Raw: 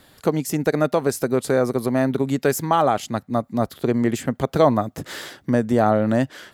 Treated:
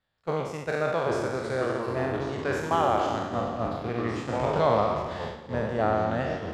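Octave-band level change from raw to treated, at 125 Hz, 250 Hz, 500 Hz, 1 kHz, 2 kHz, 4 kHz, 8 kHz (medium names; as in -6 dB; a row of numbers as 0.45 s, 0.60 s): -7.0 dB, -11.0 dB, -6.0 dB, -3.5 dB, -3.0 dB, -5.0 dB, -14.5 dB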